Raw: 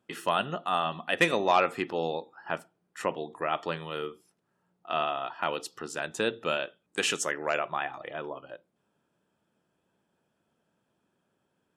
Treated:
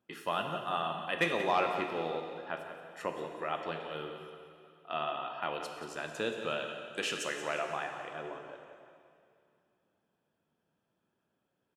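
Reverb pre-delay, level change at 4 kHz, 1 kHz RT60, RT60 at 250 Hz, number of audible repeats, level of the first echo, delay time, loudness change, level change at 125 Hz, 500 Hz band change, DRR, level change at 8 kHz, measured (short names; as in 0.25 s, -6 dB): 8 ms, -5.5 dB, 2.4 s, 2.5 s, 1, -11.5 dB, 0.178 s, -5.0 dB, -5.0 dB, -5.0 dB, 3.5 dB, -9.0 dB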